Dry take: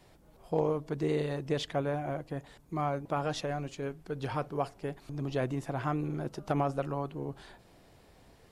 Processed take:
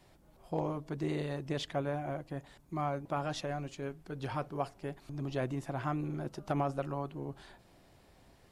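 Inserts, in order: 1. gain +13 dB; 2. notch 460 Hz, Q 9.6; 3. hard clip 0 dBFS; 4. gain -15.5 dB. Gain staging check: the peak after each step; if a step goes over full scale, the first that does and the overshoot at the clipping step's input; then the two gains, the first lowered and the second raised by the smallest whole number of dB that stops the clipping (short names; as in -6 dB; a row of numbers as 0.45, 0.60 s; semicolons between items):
-3.5, -4.5, -4.5, -20.0 dBFS; no overload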